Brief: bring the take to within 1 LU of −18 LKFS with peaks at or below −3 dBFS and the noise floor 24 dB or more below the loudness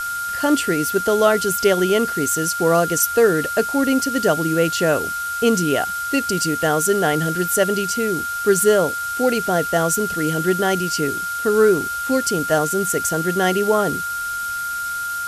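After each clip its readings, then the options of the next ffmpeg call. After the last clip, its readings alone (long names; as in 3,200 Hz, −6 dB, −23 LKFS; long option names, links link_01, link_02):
interfering tone 1,400 Hz; level of the tone −23 dBFS; background noise floor −26 dBFS; target noise floor −43 dBFS; integrated loudness −19.0 LKFS; sample peak −4.0 dBFS; target loudness −18.0 LKFS
→ -af "bandreject=frequency=1400:width=30"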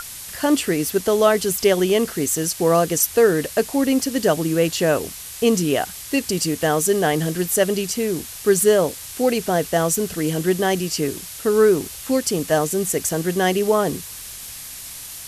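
interfering tone none found; background noise floor −36 dBFS; target noise floor −44 dBFS
→ -af "afftdn=noise_reduction=8:noise_floor=-36"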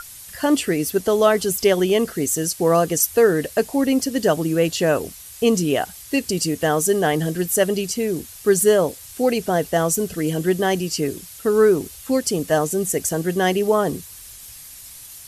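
background noise floor −40 dBFS; target noise floor −44 dBFS
→ -af "afftdn=noise_reduction=6:noise_floor=-40"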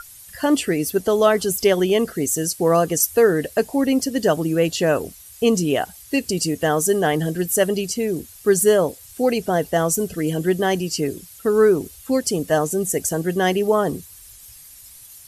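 background noise floor −44 dBFS; integrated loudness −20.0 LKFS; sample peak −4.0 dBFS; target loudness −18.0 LKFS
→ -af "volume=2dB,alimiter=limit=-3dB:level=0:latency=1"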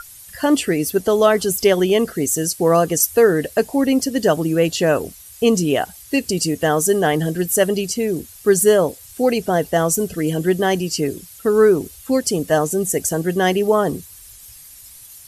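integrated loudness −18.0 LKFS; sample peak −3.0 dBFS; background noise floor −42 dBFS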